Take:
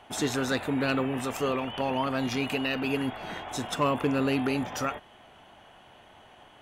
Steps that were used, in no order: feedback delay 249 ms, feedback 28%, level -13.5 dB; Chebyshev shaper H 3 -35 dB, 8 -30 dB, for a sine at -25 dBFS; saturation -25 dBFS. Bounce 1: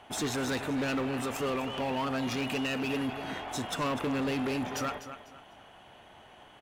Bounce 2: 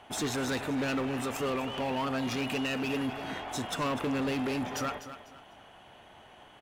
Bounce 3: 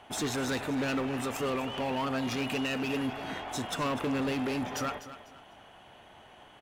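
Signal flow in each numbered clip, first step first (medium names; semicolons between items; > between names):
feedback delay > Chebyshev shaper > saturation; Chebyshev shaper > feedback delay > saturation; Chebyshev shaper > saturation > feedback delay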